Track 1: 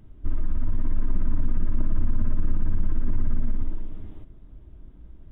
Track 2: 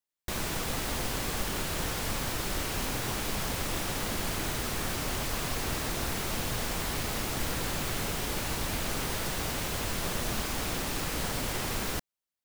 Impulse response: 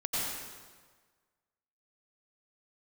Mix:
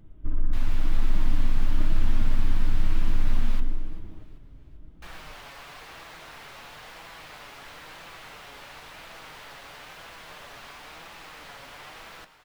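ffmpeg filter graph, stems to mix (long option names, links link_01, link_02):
-filter_complex "[0:a]volume=1dB,asplit=2[link_01][link_02];[link_02]volume=-15.5dB[link_03];[1:a]acrossover=split=580 4100:gain=0.2 1 0.2[link_04][link_05][link_06];[link_04][link_05][link_06]amix=inputs=3:normalize=0,adelay=250,volume=-3.5dB,asplit=3[link_07][link_08][link_09];[link_07]atrim=end=3.6,asetpts=PTS-STARTPTS,afade=type=out:start_time=3.596:duration=0.004:curve=hsin[link_10];[link_08]atrim=start=3.6:end=5.02,asetpts=PTS-STARTPTS,volume=0[link_11];[link_09]atrim=start=5.02,asetpts=PTS-STARTPTS,afade=type=in:duration=0.004:curve=hsin[link_12];[link_10][link_11][link_12]concat=n=3:v=0:a=1,asplit=3[link_13][link_14][link_15];[link_14]volume=-17.5dB[link_16];[link_15]volume=-17.5dB[link_17];[2:a]atrim=start_sample=2205[link_18];[link_03][link_16]amix=inputs=2:normalize=0[link_19];[link_19][link_18]afir=irnorm=-1:irlink=0[link_20];[link_17]aecho=0:1:390|780|1170|1560|1950|2340|2730|3120:1|0.52|0.27|0.141|0.0731|0.038|0.0198|0.0103[link_21];[link_01][link_13][link_20][link_21]amix=inputs=4:normalize=0,flanger=delay=5.9:depth=1.4:regen=64:speed=0.99:shape=triangular"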